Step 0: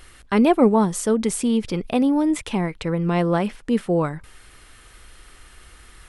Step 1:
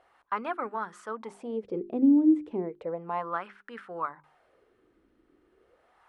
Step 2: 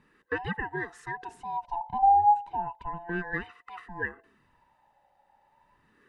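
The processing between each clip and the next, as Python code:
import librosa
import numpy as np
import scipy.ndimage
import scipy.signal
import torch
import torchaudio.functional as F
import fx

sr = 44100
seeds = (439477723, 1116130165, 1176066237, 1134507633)

y1 = fx.hum_notches(x, sr, base_hz=50, count=8)
y1 = fx.wah_lfo(y1, sr, hz=0.34, low_hz=290.0, high_hz=1500.0, q=4.0)
y1 = F.gain(torch.from_numpy(y1), 1.0).numpy()
y2 = fx.band_swap(y1, sr, width_hz=500)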